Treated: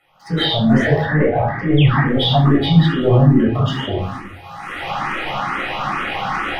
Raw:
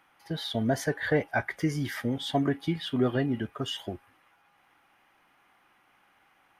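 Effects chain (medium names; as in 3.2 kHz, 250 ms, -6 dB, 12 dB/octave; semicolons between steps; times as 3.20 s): recorder AGC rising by 30 dB/s; low-pass that closes with the level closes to 1.8 kHz, closed at -25 dBFS; 2.71–3.91 s: treble shelf 2.3 kHz -9 dB; transient shaper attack -3 dB, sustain +12 dB; waveshaping leveller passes 1; 1.05–2.06 s: distance through air 390 m; 1.77–2.01 s: painted sound fall 610–3700 Hz -31 dBFS; reverberation RT60 0.65 s, pre-delay 10 ms, DRR -4 dB; barber-pole phaser +2.3 Hz; trim +3 dB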